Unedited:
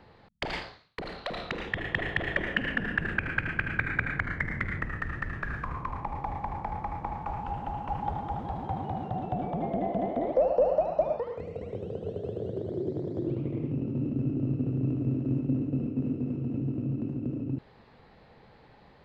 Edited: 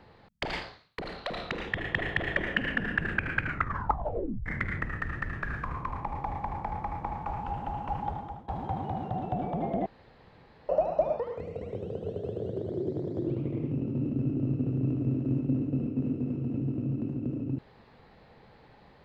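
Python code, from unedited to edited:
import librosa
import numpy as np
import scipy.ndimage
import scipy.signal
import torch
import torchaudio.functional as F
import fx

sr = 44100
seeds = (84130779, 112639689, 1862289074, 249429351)

y = fx.edit(x, sr, fx.tape_stop(start_s=3.43, length_s=1.03),
    fx.fade_out_to(start_s=7.83, length_s=0.65, curve='qsin', floor_db=-20.0),
    fx.room_tone_fill(start_s=9.86, length_s=0.83), tone=tone)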